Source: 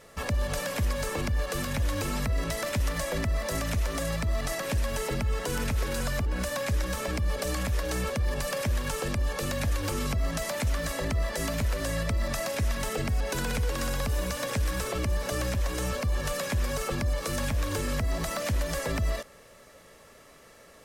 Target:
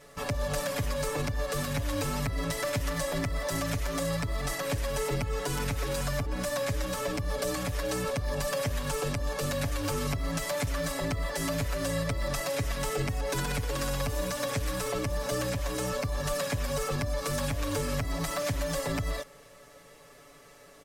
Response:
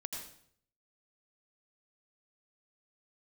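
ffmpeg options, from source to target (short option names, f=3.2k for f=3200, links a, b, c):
-af "aecho=1:1:7:0.91,volume=-3dB"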